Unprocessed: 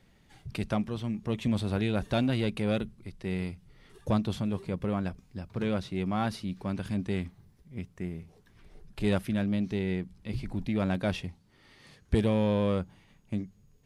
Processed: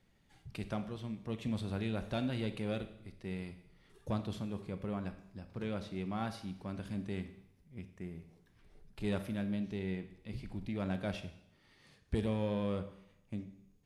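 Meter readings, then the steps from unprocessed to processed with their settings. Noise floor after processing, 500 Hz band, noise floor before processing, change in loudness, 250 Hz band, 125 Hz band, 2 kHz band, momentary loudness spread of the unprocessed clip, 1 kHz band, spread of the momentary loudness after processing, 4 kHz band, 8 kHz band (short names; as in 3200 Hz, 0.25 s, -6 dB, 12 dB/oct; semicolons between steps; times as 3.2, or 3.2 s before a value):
-68 dBFS, -8.0 dB, -62 dBFS, -8.0 dB, -8.0 dB, -8.0 dB, -8.0 dB, 15 LU, -8.0 dB, 13 LU, -8.0 dB, -8.0 dB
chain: Schroeder reverb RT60 0.75 s, combs from 28 ms, DRR 9.5 dB; gain -8.5 dB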